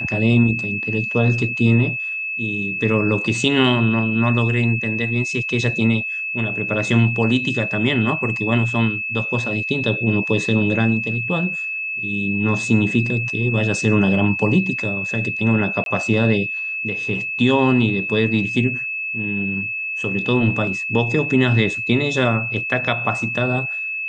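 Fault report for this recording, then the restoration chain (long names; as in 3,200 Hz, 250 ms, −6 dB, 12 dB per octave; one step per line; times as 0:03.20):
whistle 2,600 Hz −23 dBFS
0:15.84–0:15.86: drop-out 22 ms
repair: notch filter 2,600 Hz, Q 30
repair the gap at 0:15.84, 22 ms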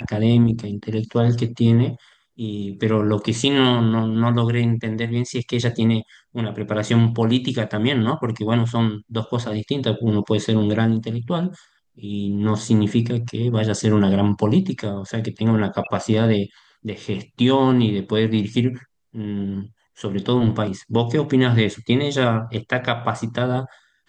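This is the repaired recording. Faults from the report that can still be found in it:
none of them is left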